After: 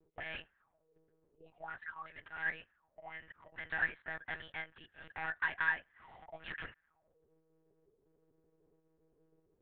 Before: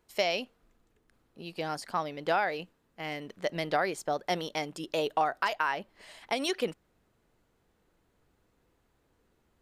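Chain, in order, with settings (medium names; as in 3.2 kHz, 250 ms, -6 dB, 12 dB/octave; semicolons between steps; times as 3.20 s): frequency shift -13 Hz; overload inside the chain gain 29 dB; slow attack 264 ms; auto-wah 380–1700 Hz, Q 9.2, up, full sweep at -40.5 dBFS; monotone LPC vocoder at 8 kHz 160 Hz; trim +11 dB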